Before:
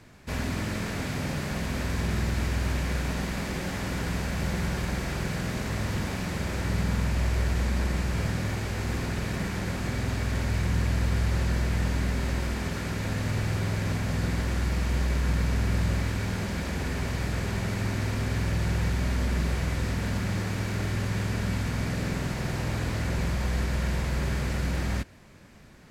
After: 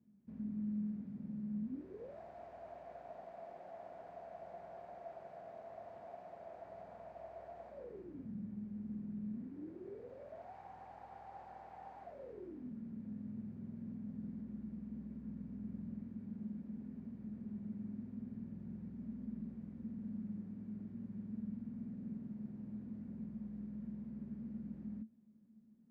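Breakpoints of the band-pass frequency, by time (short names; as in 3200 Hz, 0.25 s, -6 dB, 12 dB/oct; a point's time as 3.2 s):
band-pass, Q 16
1.62 s 210 Hz
2.2 s 680 Hz
7.68 s 680 Hz
8.33 s 210 Hz
9.29 s 210 Hz
10.54 s 780 Hz
12.01 s 780 Hz
12.73 s 220 Hz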